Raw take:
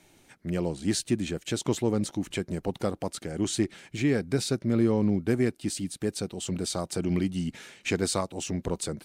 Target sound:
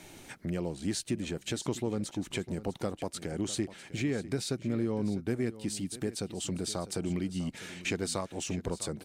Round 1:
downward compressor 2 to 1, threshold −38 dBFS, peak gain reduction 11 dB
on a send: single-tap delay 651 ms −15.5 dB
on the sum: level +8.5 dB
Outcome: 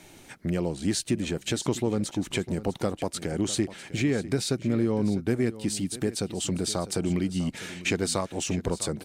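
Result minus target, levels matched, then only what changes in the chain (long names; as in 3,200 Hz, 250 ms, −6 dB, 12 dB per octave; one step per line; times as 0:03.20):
downward compressor: peak gain reduction −6 dB
change: downward compressor 2 to 1, threshold −50 dBFS, peak gain reduction 17 dB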